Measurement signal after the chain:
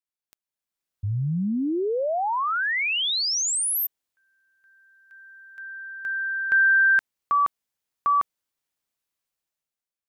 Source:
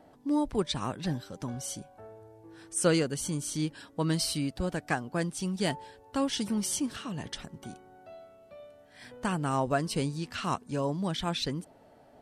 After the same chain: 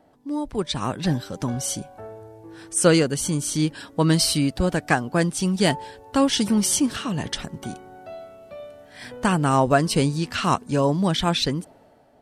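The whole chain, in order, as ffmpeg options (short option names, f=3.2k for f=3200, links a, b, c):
-af "dynaudnorm=f=140:g=11:m=11.5dB,volume=-1dB"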